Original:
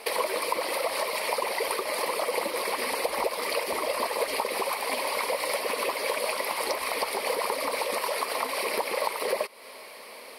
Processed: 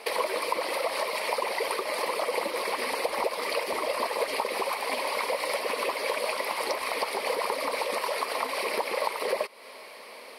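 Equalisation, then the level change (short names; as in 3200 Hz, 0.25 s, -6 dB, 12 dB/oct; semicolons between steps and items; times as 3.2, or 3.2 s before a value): low shelf 110 Hz -7 dB; high shelf 9700 Hz -9 dB; 0.0 dB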